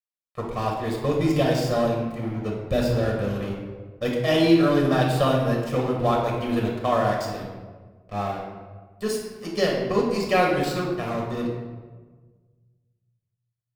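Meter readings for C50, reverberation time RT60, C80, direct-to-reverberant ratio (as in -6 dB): 2.5 dB, 1.4 s, 4.5 dB, -2.0 dB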